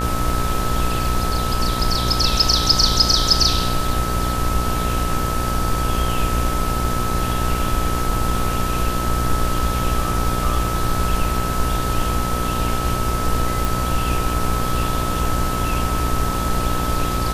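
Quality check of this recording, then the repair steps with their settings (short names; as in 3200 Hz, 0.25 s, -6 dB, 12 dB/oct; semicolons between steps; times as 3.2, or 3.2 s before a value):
buzz 60 Hz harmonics 30 -24 dBFS
tone 1300 Hz -25 dBFS
13.65 pop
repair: de-click; notch 1300 Hz, Q 30; de-hum 60 Hz, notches 30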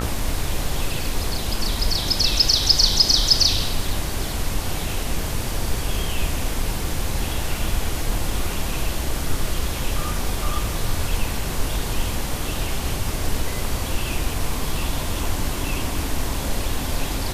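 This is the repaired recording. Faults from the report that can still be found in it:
none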